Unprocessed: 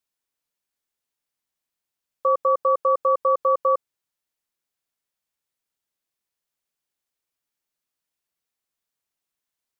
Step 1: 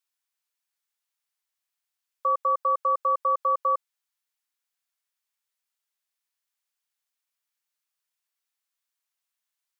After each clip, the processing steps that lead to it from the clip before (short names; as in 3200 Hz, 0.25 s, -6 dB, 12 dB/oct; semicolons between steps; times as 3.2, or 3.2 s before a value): HPF 930 Hz 12 dB/oct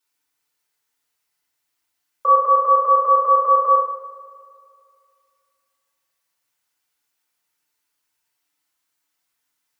multi-head echo 77 ms, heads all three, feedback 63%, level -21 dB; FDN reverb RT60 0.66 s, low-frequency decay 1.55×, high-frequency decay 0.5×, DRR -7.5 dB; gain +3 dB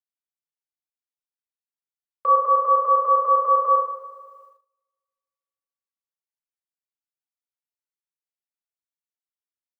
gate -47 dBFS, range -24 dB; gain -3 dB